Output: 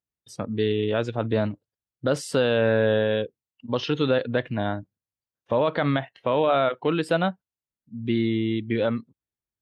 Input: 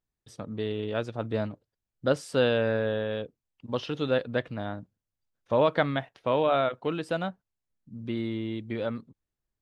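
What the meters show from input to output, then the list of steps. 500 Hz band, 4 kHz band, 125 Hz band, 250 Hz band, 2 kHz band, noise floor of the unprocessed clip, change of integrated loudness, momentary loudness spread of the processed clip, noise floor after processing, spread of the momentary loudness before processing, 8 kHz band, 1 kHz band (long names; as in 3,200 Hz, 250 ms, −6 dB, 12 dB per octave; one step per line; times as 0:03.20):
+4.0 dB, +4.5 dB, +5.5 dB, +6.0 dB, +4.0 dB, below −85 dBFS, +4.5 dB, 11 LU, below −85 dBFS, 13 LU, can't be measured, +3.5 dB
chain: noise reduction from a noise print of the clip's start 14 dB
high-pass filter 62 Hz
brickwall limiter −19.5 dBFS, peak gain reduction 10 dB
level +8 dB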